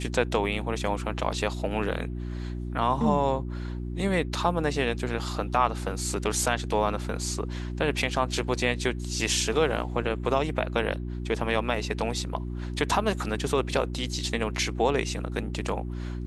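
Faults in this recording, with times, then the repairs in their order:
hum 60 Hz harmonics 6 -33 dBFS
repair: de-hum 60 Hz, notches 6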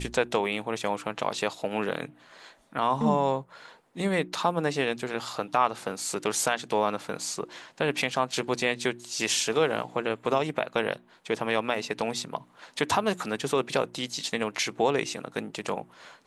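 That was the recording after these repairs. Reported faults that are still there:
none

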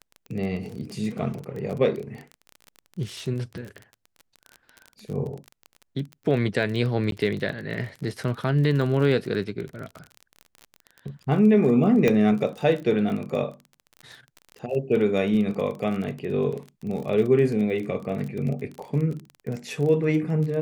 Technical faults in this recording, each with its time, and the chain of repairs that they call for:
crackle 28/s -31 dBFS
7.11–7.12 gap 12 ms
12.08 pop -9 dBFS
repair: de-click; interpolate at 7.11, 12 ms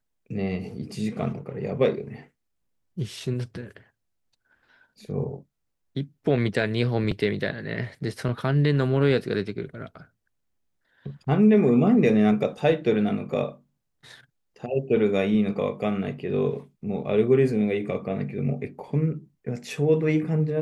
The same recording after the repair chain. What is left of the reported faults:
12.08 pop

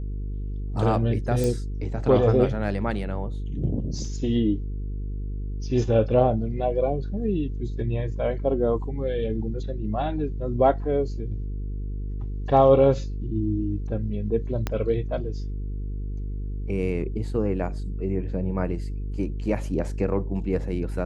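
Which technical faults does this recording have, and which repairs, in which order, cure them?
buzz 50 Hz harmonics 9 -30 dBFS
1.44 pop
14.67 pop -12 dBFS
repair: de-click; de-hum 50 Hz, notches 9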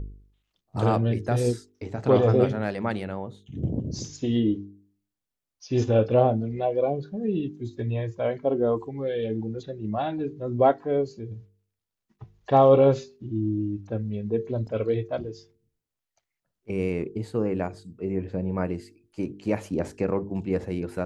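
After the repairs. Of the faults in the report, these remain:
14.67 pop

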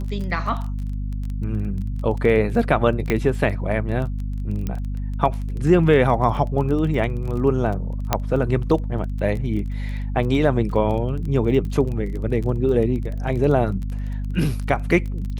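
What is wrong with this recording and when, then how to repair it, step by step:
crackle 21/s -28 dBFS
hum 50 Hz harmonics 5 -26 dBFS
3.1 pop -8 dBFS
4.67 pop -14 dBFS
8.13 pop -3 dBFS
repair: de-click; de-hum 50 Hz, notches 5

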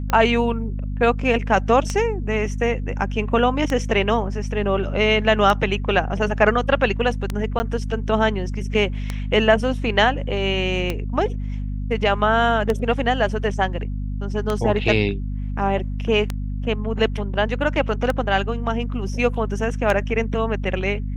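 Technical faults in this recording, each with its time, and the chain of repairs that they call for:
hum 50 Hz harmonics 5 -26 dBFS
tick 33 1/3 rpm -9 dBFS
7.59–7.6 gap 10 ms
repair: de-click; de-hum 50 Hz, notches 5; interpolate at 7.59, 10 ms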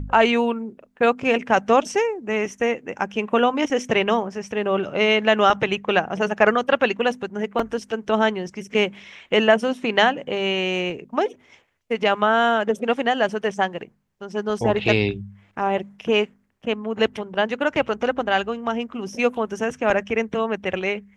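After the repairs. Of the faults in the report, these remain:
none

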